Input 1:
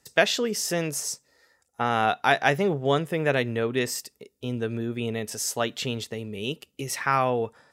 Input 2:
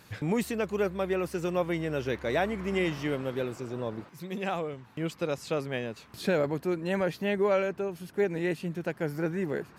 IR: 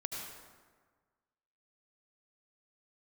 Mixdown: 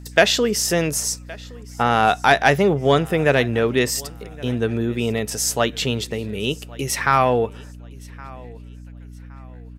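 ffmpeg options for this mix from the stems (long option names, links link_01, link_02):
-filter_complex "[0:a]volume=1dB,asplit=2[link_01][link_02];[link_02]volume=-23.5dB[link_03];[1:a]acompressor=threshold=-40dB:ratio=3,highpass=1100,volume=-15.5dB,asplit=2[link_04][link_05];[link_05]volume=-10.5dB[link_06];[link_03][link_06]amix=inputs=2:normalize=0,aecho=0:1:1117|2234|3351|4468:1|0.3|0.09|0.027[link_07];[link_01][link_04][link_07]amix=inputs=3:normalize=0,acontrast=55,aeval=exprs='val(0)+0.0141*(sin(2*PI*60*n/s)+sin(2*PI*2*60*n/s)/2+sin(2*PI*3*60*n/s)/3+sin(2*PI*4*60*n/s)/4+sin(2*PI*5*60*n/s)/5)':channel_layout=same"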